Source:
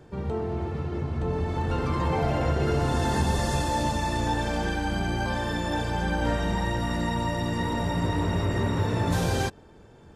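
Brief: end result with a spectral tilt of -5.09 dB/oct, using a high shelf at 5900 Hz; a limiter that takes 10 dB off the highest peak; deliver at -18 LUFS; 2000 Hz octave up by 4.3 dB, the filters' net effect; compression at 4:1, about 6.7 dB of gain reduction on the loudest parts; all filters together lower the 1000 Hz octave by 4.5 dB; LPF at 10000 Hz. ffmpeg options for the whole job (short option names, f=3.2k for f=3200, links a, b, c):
-af "lowpass=10k,equalizer=f=1k:t=o:g=-7,equalizer=f=2k:t=o:g=8.5,highshelf=f=5.9k:g=-7.5,acompressor=threshold=-29dB:ratio=4,volume=20dB,alimiter=limit=-9.5dB:level=0:latency=1"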